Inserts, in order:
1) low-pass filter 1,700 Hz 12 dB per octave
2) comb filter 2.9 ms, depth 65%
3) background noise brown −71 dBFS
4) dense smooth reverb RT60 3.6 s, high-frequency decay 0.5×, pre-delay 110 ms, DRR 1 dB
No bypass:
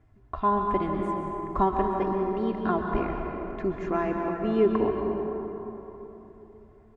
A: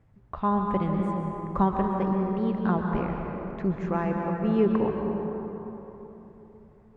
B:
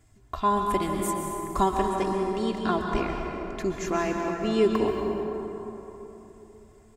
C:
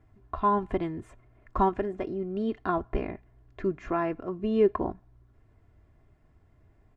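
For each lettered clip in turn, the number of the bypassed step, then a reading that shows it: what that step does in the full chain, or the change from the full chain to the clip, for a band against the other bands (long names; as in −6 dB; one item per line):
2, 125 Hz band +8.0 dB
1, 2 kHz band +3.5 dB
4, change in momentary loudness spread −2 LU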